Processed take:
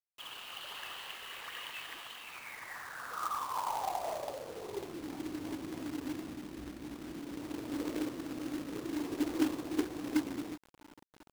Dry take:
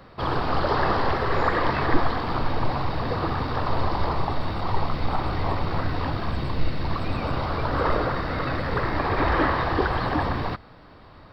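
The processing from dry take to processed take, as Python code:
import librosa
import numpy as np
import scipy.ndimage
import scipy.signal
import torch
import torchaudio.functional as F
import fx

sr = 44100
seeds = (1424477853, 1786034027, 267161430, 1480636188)

y = fx.ring_mod(x, sr, carrier_hz=61.0, at=(6.36, 7.4))
y = fx.filter_sweep_bandpass(y, sr, from_hz=2900.0, to_hz=300.0, start_s=2.16, end_s=5.12, q=7.9)
y = fx.quant_companded(y, sr, bits=4)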